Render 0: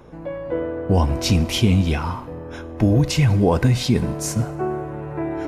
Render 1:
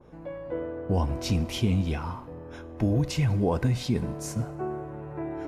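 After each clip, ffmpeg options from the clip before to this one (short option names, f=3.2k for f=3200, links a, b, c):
-af "adynamicequalizer=threshold=0.01:dfrequency=1500:dqfactor=0.7:tfrequency=1500:tqfactor=0.7:attack=5:release=100:ratio=0.375:range=1.5:mode=cutabove:tftype=highshelf,volume=-8dB"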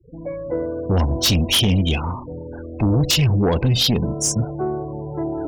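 -af "afftfilt=real='re*gte(hypot(re,im),0.0126)':imag='im*gte(hypot(re,im),0.0126)':win_size=1024:overlap=0.75,highshelf=f=2.4k:t=q:w=3:g=9.5,aeval=exprs='0.355*sin(PI/2*2.82*val(0)/0.355)':c=same,volume=-3.5dB"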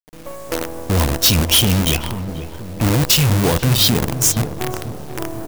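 -filter_complex "[0:a]acrusher=bits=4:dc=4:mix=0:aa=0.000001,crystalizer=i=1:c=0,asplit=2[a][b];[b]adelay=487,lowpass=f=1k:p=1,volume=-10dB,asplit=2[c][d];[d]adelay=487,lowpass=f=1k:p=1,volume=0.5,asplit=2[e][f];[f]adelay=487,lowpass=f=1k:p=1,volume=0.5,asplit=2[g][h];[h]adelay=487,lowpass=f=1k:p=1,volume=0.5,asplit=2[i][j];[j]adelay=487,lowpass=f=1k:p=1,volume=0.5[k];[a][c][e][g][i][k]amix=inputs=6:normalize=0"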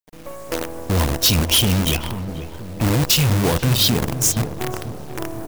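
-af "volume=-2dB" -ar 44100 -c:a nellymoser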